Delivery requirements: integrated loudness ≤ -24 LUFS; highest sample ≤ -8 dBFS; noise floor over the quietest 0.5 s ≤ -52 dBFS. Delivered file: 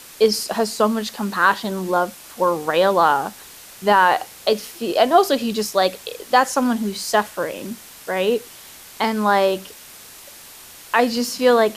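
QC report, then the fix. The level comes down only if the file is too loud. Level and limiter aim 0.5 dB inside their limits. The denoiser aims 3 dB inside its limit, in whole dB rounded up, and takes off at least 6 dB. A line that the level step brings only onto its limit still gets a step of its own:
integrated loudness -19.5 LUFS: fail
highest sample -3.5 dBFS: fail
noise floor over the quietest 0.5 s -42 dBFS: fail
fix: denoiser 8 dB, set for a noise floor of -42 dBFS; gain -5 dB

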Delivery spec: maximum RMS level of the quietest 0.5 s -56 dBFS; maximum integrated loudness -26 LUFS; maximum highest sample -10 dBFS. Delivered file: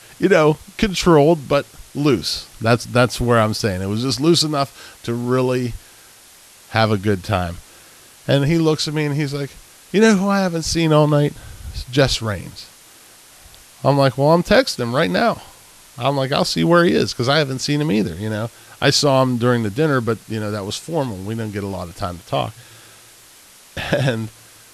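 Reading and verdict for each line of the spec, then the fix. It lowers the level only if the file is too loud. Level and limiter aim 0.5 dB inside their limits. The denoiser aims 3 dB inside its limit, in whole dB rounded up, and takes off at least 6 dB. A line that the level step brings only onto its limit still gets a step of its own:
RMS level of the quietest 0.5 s -46 dBFS: fail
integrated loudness -18.5 LUFS: fail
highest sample -1.5 dBFS: fail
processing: denoiser 6 dB, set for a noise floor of -46 dBFS; gain -8 dB; limiter -10.5 dBFS

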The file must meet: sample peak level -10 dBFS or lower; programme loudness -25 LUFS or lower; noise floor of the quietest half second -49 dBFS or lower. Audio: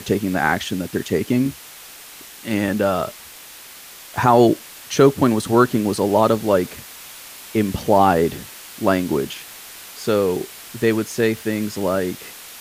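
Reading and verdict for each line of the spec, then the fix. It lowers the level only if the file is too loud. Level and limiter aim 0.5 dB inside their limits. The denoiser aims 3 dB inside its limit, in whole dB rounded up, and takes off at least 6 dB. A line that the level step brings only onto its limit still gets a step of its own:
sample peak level -2.0 dBFS: fail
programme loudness -19.5 LUFS: fail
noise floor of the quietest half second -40 dBFS: fail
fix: denoiser 6 dB, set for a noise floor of -40 dBFS; gain -6 dB; limiter -10.5 dBFS

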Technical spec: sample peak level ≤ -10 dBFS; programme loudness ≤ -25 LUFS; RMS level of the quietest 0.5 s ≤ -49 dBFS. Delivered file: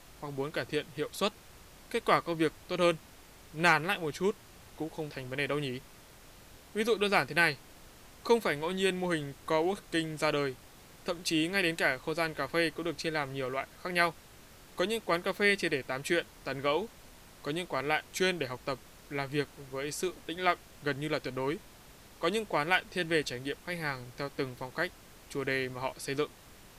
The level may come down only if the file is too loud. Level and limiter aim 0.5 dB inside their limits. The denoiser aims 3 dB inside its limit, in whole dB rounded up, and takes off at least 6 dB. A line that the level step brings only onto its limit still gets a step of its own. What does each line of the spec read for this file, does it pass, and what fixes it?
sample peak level -11.0 dBFS: OK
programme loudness -32.0 LUFS: OK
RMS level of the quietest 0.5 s -54 dBFS: OK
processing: none

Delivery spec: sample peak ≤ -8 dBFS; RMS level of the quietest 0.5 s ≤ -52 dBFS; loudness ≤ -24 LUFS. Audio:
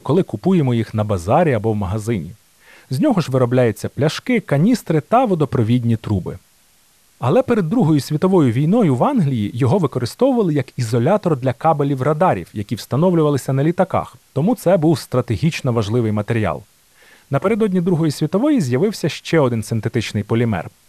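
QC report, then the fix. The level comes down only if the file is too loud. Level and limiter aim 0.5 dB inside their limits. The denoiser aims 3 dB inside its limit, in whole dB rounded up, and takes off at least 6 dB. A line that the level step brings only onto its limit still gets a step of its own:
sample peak -3.5 dBFS: fail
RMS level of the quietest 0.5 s -54 dBFS: OK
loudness -17.5 LUFS: fail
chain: gain -7 dB

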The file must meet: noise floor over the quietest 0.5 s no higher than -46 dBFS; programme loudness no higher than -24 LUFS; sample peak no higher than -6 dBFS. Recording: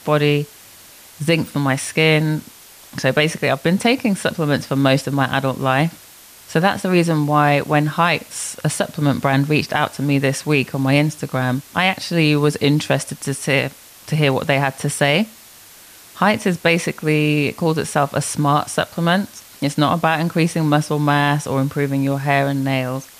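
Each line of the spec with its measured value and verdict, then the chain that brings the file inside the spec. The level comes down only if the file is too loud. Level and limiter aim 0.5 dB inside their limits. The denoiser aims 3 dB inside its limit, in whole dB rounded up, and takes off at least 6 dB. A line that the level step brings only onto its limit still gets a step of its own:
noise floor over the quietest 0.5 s -43 dBFS: fail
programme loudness -18.5 LUFS: fail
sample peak -4.0 dBFS: fail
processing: gain -6 dB

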